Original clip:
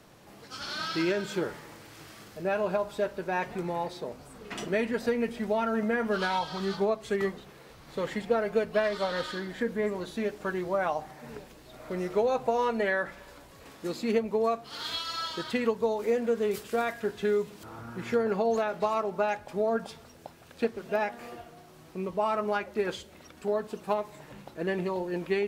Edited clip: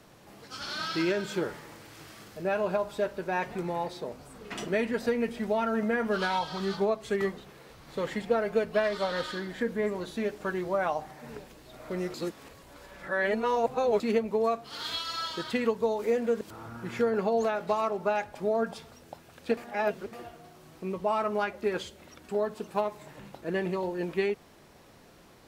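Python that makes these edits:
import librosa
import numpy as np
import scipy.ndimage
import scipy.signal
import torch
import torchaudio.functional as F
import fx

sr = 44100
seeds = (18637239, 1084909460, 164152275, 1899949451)

y = fx.edit(x, sr, fx.reverse_span(start_s=12.14, length_s=1.86),
    fx.cut(start_s=16.41, length_s=1.13),
    fx.reverse_span(start_s=20.7, length_s=0.56), tone=tone)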